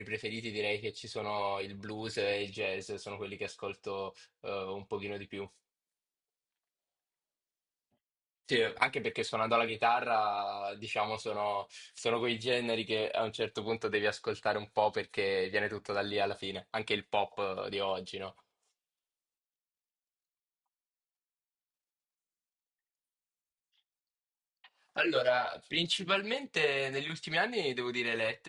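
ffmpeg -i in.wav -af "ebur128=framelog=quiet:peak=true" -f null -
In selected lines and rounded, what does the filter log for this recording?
Integrated loudness:
  I:         -33.5 LUFS
  Threshold: -43.7 LUFS
Loudness range:
  LRA:        11.1 LU
  Threshold: -54.8 LUFS
  LRA low:   -42.9 LUFS
  LRA high:  -31.8 LUFS
True peak:
  Peak:      -10.8 dBFS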